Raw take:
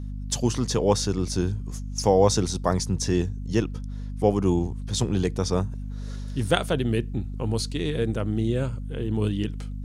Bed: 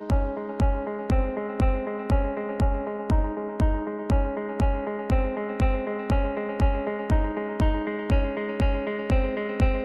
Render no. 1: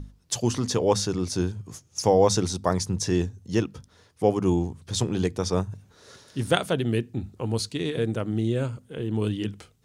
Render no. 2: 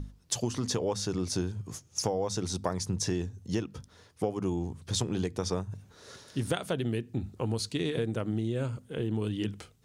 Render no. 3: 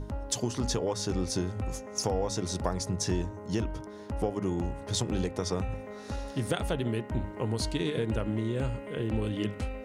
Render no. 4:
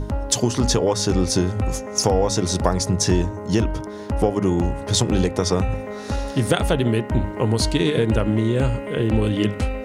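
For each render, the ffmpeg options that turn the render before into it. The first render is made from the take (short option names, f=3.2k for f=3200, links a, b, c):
-af "bandreject=f=50:t=h:w=6,bandreject=f=100:t=h:w=6,bandreject=f=150:t=h:w=6,bandreject=f=200:t=h:w=6,bandreject=f=250:t=h:w=6"
-af "acompressor=threshold=-26dB:ratio=12"
-filter_complex "[1:a]volume=-13dB[a];[0:a][a]amix=inputs=2:normalize=0"
-af "volume=11dB"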